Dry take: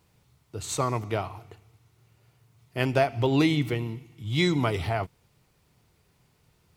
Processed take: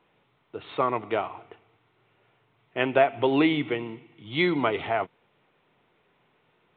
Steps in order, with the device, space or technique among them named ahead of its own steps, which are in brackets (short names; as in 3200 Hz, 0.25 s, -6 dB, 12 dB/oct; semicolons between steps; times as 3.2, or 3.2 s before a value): telephone (BPF 290–3400 Hz; gain +3.5 dB; µ-law 64 kbps 8000 Hz)